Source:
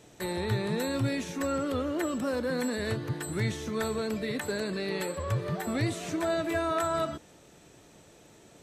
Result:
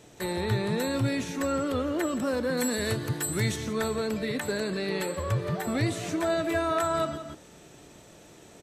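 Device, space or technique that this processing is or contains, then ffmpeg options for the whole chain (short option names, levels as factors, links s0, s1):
ducked delay: -filter_complex "[0:a]asettb=1/sr,asplit=3[s0][s1][s2];[s0]atrim=end=2.574[s3];[s1]atrim=start=2.57:end=3.56,asetpts=PTS-STARTPTS,afade=t=in:d=0.004:c=qsin,afade=t=out:st=0.986:d=0.004:c=qsin,highshelf=f=5800:g=11.5[s4];[s2]atrim=start=3.556[s5];[s3][s4]acrossfade=d=0.004:c1=hsin:c2=qsin[s6];[s6][s5]acrossfade=d=0.004:c1=qsin:c2=hsin,asplit=3[s7][s8][s9];[s8]adelay=170,volume=0.794[s10];[s9]apad=whole_len=387804[s11];[s10][s11]sidechaincompress=threshold=0.00562:ratio=8:attack=16:release=220[s12];[s7][s12]amix=inputs=2:normalize=0,volume=1.26"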